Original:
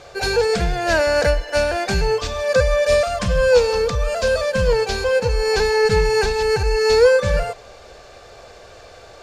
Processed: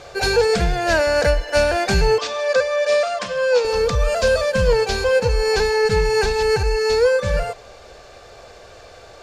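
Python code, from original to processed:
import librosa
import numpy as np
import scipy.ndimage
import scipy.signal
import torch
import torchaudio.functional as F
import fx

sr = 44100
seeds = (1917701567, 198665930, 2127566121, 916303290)

y = fx.rider(x, sr, range_db=10, speed_s=0.5)
y = fx.bandpass_edges(y, sr, low_hz=390.0, high_hz=6800.0, at=(2.18, 3.65))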